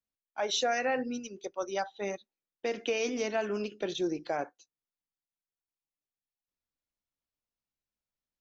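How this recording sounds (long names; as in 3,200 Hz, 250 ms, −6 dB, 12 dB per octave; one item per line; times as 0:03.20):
background noise floor −96 dBFS
spectral slope −3.0 dB per octave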